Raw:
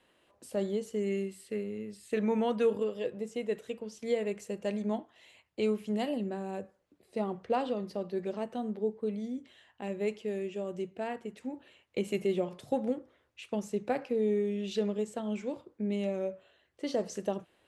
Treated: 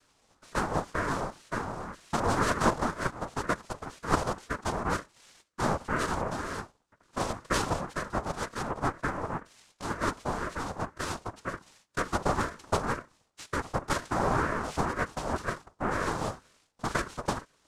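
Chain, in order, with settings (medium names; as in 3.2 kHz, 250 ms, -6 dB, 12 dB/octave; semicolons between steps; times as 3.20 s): tracing distortion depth 0.2 ms; noise-vocoded speech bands 2; ring modulator with a swept carrier 560 Hz, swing 50%, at 2 Hz; trim +4.5 dB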